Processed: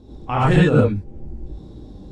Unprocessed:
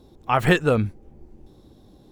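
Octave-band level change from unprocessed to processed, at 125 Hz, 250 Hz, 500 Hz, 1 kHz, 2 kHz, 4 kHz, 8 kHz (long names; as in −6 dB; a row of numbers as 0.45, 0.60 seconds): +7.5 dB, +6.0 dB, +3.0 dB, +1.5 dB, −1.5 dB, −1.5 dB, can't be measured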